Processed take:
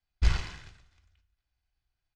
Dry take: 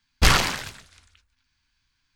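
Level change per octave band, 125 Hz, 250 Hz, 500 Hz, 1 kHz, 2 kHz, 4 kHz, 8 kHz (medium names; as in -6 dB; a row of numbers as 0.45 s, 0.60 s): -5.5 dB, -15.0 dB, -18.0 dB, -20.0 dB, -17.0 dB, -18.0 dB, -21.5 dB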